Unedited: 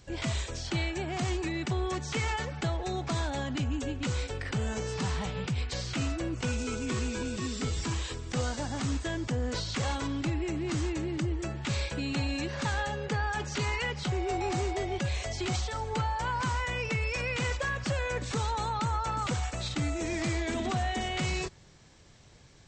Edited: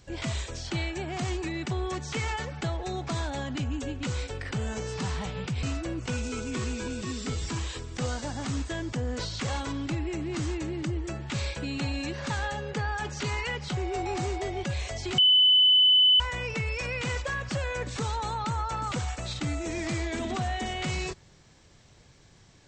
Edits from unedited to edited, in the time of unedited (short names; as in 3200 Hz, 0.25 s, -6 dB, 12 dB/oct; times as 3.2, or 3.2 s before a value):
5.63–5.98 cut
15.53–16.55 bleep 3010 Hz -16 dBFS